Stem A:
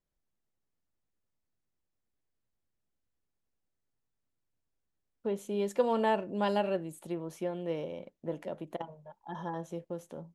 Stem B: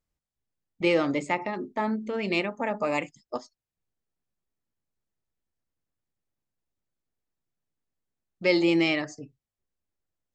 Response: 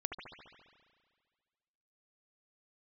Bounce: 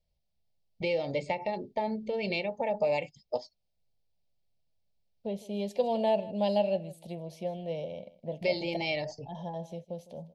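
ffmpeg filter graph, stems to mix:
-filter_complex "[0:a]highshelf=f=6k:g=10.5,volume=2dB,asplit=2[a][b];[b]volume=-18.5dB[c];[1:a]aecho=1:1:2.2:0.46,acompressor=threshold=-25dB:ratio=6,volume=2.5dB[d];[c]aecho=0:1:157:1[e];[a][d][e]amix=inputs=3:normalize=0,firequalizer=gain_entry='entry(200,0);entry(310,-13);entry(640,5);entry(1300,-26);entry(2200,-5);entry(4600,1);entry(7000,-16)':delay=0.05:min_phase=1"

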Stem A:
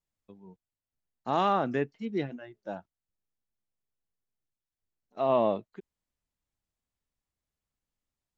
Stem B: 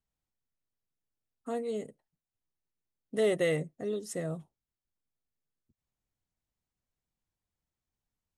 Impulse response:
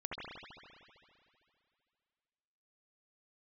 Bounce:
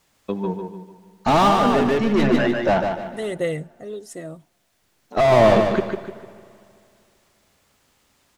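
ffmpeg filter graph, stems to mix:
-filter_complex "[0:a]highshelf=f=4.1k:g=9,asplit=2[a][b];[b]highpass=f=720:p=1,volume=34dB,asoftclip=type=tanh:threshold=-13.5dB[c];[a][c]amix=inputs=2:normalize=0,lowpass=f=1.9k:p=1,volume=-6dB,lowshelf=f=270:g=8.5,volume=2.5dB,asplit=3[d][e][f];[e]volume=-14dB[g];[f]volume=-5dB[h];[1:a]aphaser=in_gain=1:out_gain=1:delay=3.5:decay=0.45:speed=0.58:type=triangular,volume=0.5dB,asplit=2[i][j];[j]apad=whole_len=369545[k];[d][k]sidechaincompress=threshold=-35dB:ratio=8:attack=16:release=1140[l];[2:a]atrim=start_sample=2205[m];[g][m]afir=irnorm=-1:irlink=0[n];[h]aecho=0:1:149|298|447|596|745:1|0.36|0.13|0.0467|0.0168[o];[l][i][n][o]amix=inputs=4:normalize=0"

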